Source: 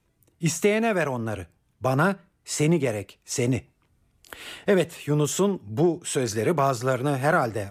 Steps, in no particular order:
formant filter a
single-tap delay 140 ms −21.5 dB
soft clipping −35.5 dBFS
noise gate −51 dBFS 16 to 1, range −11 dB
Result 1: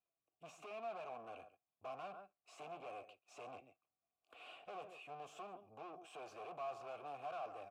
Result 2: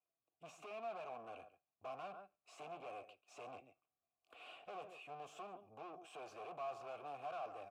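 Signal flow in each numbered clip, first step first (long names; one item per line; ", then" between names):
single-tap delay, then soft clipping, then noise gate, then formant filter
noise gate, then single-tap delay, then soft clipping, then formant filter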